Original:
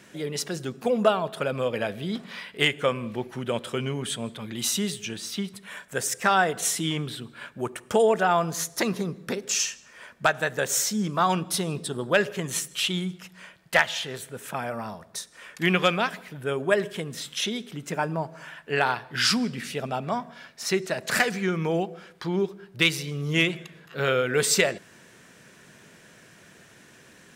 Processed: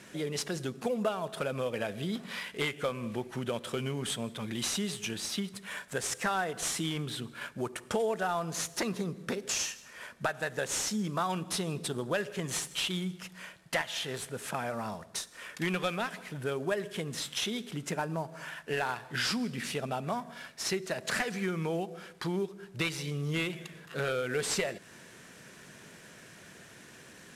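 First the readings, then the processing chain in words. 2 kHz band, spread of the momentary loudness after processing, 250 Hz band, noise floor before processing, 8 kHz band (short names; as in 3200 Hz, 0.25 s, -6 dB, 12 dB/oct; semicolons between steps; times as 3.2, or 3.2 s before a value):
-8.5 dB, 13 LU, -6.0 dB, -53 dBFS, -6.5 dB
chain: CVSD 64 kbps; compressor 2.5:1, threshold -32 dBFS, peak gain reduction 12 dB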